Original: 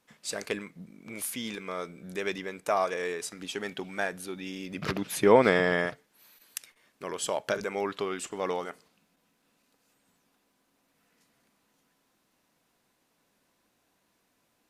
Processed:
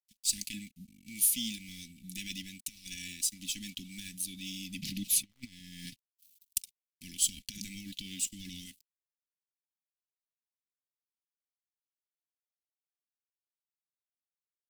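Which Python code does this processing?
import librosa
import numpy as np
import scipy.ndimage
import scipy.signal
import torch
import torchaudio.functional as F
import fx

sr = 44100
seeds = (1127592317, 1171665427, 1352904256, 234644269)

y = fx.over_compress(x, sr, threshold_db=-30.0, ratio=-0.5)
y = scipy.signal.sosfilt(scipy.signal.butter(2, 120.0, 'highpass', fs=sr, output='sos'), y)
y = fx.tube_stage(y, sr, drive_db=20.0, bias=0.3)
y = np.sign(y) * np.maximum(np.abs(y) - 10.0 ** (-51.0 / 20.0), 0.0)
y = scipy.signal.sosfilt(scipy.signal.cheby2(4, 50, [430.0, 1400.0], 'bandstop', fs=sr, output='sos'), y)
y = fx.high_shelf(y, sr, hz=7600.0, db=10.5)
y = y + 0.53 * np.pad(y, (int(3.5 * sr / 1000.0), 0))[:len(y)]
y = fx.dmg_crackle(y, sr, seeds[0], per_s=87.0, level_db=-56.0, at=(3.35, 5.56), fade=0.02)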